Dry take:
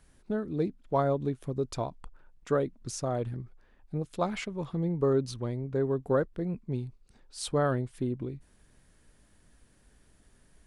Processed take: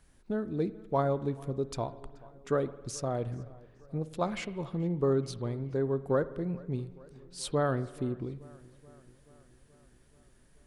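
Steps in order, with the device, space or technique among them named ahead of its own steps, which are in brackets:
dub delay into a spring reverb (feedback echo with a low-pass in the loop 430 ms, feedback 65%, low-pass 4,100 Hz, level −22.5 dB; spring reverb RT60 1.2 s, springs 51 ms, chirp 35 ms, DRR 15.5 dB)
level −1.5 dB

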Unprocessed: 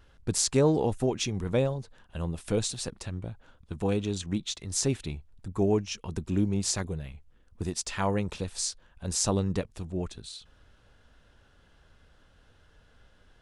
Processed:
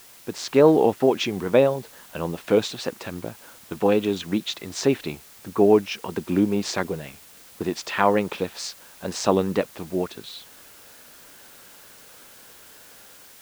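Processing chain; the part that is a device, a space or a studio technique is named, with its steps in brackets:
dictaphone (band-pass filter 270–3,000 Hz; automatic gain control gain up to 9.5 dB; tape wow and flutter; white noise bed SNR 24 dB)
level +1.5 dB

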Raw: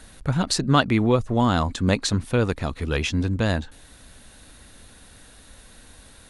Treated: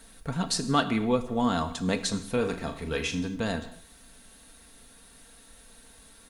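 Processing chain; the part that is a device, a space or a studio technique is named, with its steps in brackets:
turntable without a phono preamp (RIAA equalisation recording; white noise bed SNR 30 dB)
spectral tilt −3 dB per octave
comb filter 4.4 ms, depth 50%
0:02.31–0:03.19: flutter between parallel walls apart 6.6 metres, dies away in 0.27 s
reverb whose tail is shaped and stops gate 280 ms falling, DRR 9 dB
level −7 dB

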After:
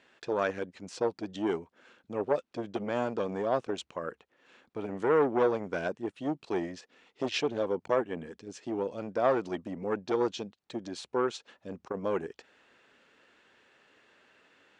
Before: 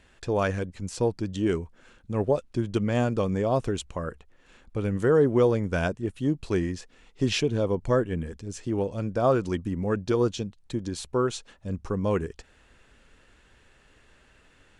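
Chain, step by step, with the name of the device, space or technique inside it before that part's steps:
public-address speaker with an overloaded transformer (saturating transformer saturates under 630 Hz; band-pass filter 270–5,200 Hz)
level −1.5 dB

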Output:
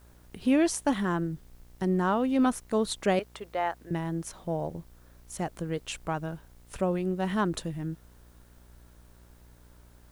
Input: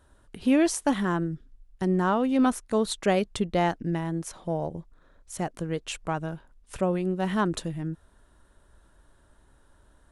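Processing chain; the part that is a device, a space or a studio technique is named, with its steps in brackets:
0:03.19–0:03.91: three-way crossover with the lows and the highs turned down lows −24 dB, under 460 Hz, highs −12 dB, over 2,500 Hz
video cassette with head-switching buzz (hum with harmonics 60 Hz, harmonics 39, −54 dBFS −7 dB per octave; white noise bed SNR 36 dB)
level −2 dB

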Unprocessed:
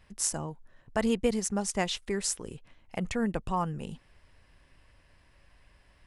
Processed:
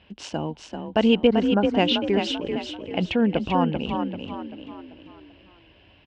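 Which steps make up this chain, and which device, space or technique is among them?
0:01.27–0:01.74: high shelf with overshoot 2,100 Hz −11 dB, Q 3
frequency-shifting delay pedal into a guitar cabinet (echo with shifted repeats 389 ms, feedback 43%, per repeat +34 Hz, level −6 dB; loudspeaker in its box 85–3,700 Hz, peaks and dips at 130 Hz −9 dB, 290 Hz +5 dB, 1,200 Hz −9 dB, 1,900 Hz −9 dB, 2,900 Hz +9 dB)
level +8.5 dB

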